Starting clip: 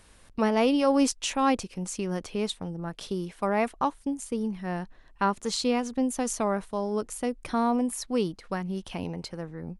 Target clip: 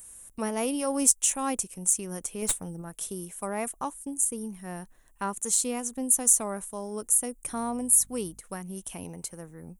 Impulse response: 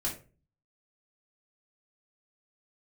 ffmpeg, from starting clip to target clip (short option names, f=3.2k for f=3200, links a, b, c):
-filter_complex "[0:a]aexciter=amount=8.5:drive=9.3:freq=6.9k,asettb=1/sr,asplit=3[a][b][c];[a]atrim=end=2.424[d];[b]atrim=start=2.42:end=2.82,asetpts=PTS-STARTPTS,afade=t=in:d=0.004:c=qsin,afade=t=out:st=0.396:d=0.004:c=qsin,aeval=exprs='0.398*(cos(1*acos(clip(val(0)/0.398,-1,1)))-cos(1*PI/2))+0.178*(cos(2*acos(clip(val(0)/0.398,-1,1)))-cos(2*PI/2))+0.0447*(cos(5*acos(clip(val(0)/0.398,-1,1)))-cos(5*PI/2))':c=same[e];[c]atrim=start=2.816[f];[d][e]acrossfade=d=0.004:c1=hsin:c2=qsin[g];[g][f]acrossfade=d=0.004:c1=qsin:c2=hsin,asettb=1/sr,asplit=3[h][i][j];[h]atrim=end=7.514[k];[i]atrim=start=7.51:end=8.41,asetpts=PTS-STARTPTS,afade=t=in:d=0.004:c=qsin,afade=t=out:st=0.896:d=0.004:c=qsin,aeval=exprs='val(0)+0.00447*(sin(2*PI*50*n/s)+sin(2*PI*2*50*n/s)/2+sin(2*PI*3*50*n/s)/3+sin(2*PI*4*50*n/s)/4+sin(2*PI*5*50*n/s)/5)':c=same[l];[j]atrim=start=8.406[m];[k][l]acrossfade=d=0.004:c1=hsin:c2=qsin[n];[n][m]acrossfade=d=0.004:c1=qsin:c2=hsin,volume=-6.5dB"